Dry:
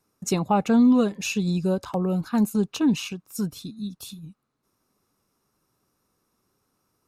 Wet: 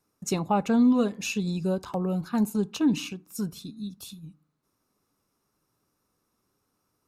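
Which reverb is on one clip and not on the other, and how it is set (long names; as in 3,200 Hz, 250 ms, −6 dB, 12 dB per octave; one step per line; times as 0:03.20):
feedback delay network reverb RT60 0.46 s, low-frequency decay 1.3×, high-frequency decay 0.5×, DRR 17.5 dB
level −3 dB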